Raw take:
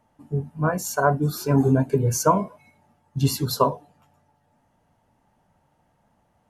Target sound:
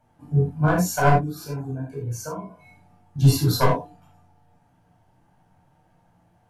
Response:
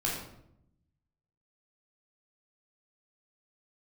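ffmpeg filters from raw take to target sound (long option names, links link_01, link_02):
-filter_complex "[0:a]asettb=1/sr,asplit=3[link_01][link_02][link_03];[link_01]atrim=end=1.144[link_04];[link_02]atrim=start=1.14:end=3.19,asetpts=PTS-STARTPTS,afade=type=in:duration=0.004:curve=qsin,afade=type=out:start_time=2.046:duration=0.004:curve=qsin,acompressor=threshold=-32dB:ratio=10[link_05];[link_03]atrim=start=3.186[link_06];[link_04][link_05]acrossfade=duration=0.004:curve1=hsin:curve2=qsin[link_07];[link_07][link_06]acrossfade=duration=0.004:curve1=qsin:curve2=hsin,aeval=exprs='clip(val(0),-1,0.141)':channel_layout=same[link_08];[1:a]atrim=start_sample=2205,atrim=end_sample=4410[link_09];[link_08][link_09]afir=irnorm=-1:irlink=0,volume=-3.5dB"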